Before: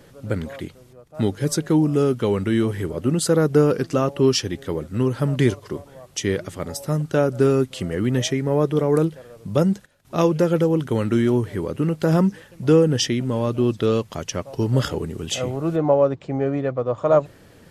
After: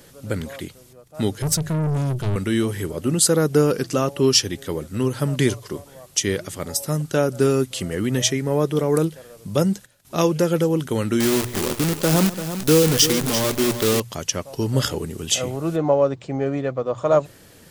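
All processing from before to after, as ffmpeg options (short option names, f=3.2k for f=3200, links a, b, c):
-filter_complex "[0:a]asettb=1/sr,asplit=3[a][b][c];[a]atrim=end=1.424[d];[b]atrim=start=1.42:end=2.36,asetpts=PTS-STARTPTS,afade=t=in:d=0.004:c=qsin,afade=t=out:st=0.936:d=0.004:c=qsin,lowshelf=f=190:t=q:w=1.5:g=14,aeval=exprs='(tanh(8.91*val(0)+0.25)-tanh(0.25))/8.91':c=same[e];[c]atrim=start=2.356[f];[d][e]acrossfade=d=0.004:c1=hsin:c2=qsin[g];[g][f]acrossfade=d=0.004:c1=qsin:c2=hsin,asettb=1/sr,asplit=3[h][i][j];[h]atrim=end=11.204[k];[i]atrim=start=11.2:end=14,asetpts=PTS-STARTPTS,afade=t=in:d=0.004:c=qsin,afade=t=out:st=2.796:d=0.004:c=qsin,acrusher=bits=5:dc=4:mix=0:aa=0.000001,aecho=1:1:136|341:0.141|0.299,atrim=end_sample=123480[l];[j]atrim=start=13.996[m];[k][l]acrossfade=d=0.004:c1=hsin:c2=qsin[n];[n][m]acrossfade=d=0.004:c1=qsin:c2=hsin,highshelf=f=3.8k:g=12,bandreject=f=60:t=h:w=6,bandreject=f=120:t=h:w=6,volume=-1dB"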